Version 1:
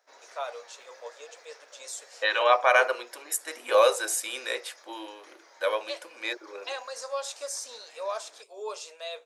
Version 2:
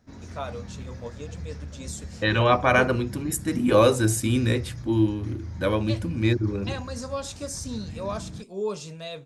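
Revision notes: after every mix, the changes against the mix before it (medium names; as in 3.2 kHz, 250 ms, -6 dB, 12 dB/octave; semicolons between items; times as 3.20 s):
master: remove steep high-pass 500 Hz 36 dB/octave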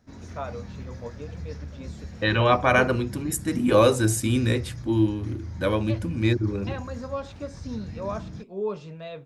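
first voice: add low-pass 2.3 kHz 12 dB/octave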